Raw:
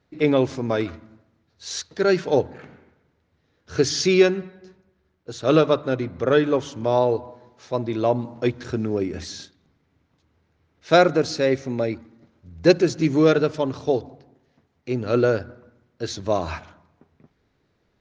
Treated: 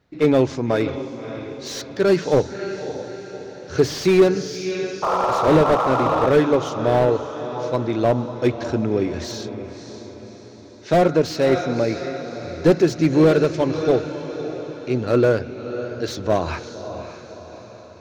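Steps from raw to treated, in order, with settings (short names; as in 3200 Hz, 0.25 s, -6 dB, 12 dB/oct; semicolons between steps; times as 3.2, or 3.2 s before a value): painted sound noise, 5.02–6.27, 460–1400 Hz -23 dBFS; diffused feedback echo 0.588 s, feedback 51%, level -11.5 dB; slew limiter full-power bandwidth 110 Hz; gain +3 dB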